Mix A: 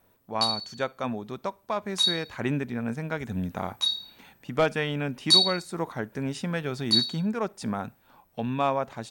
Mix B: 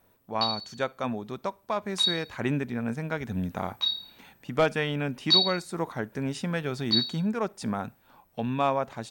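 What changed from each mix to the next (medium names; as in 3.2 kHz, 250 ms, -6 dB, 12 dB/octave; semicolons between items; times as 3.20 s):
background: add low-pass 4.4 kHz 24 dB/octave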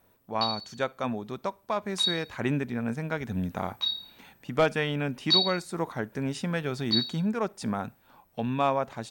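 background: send off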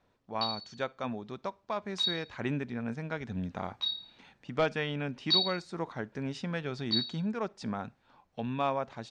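master: add four-pole ladder low-pass 6.9 kHz, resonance 20%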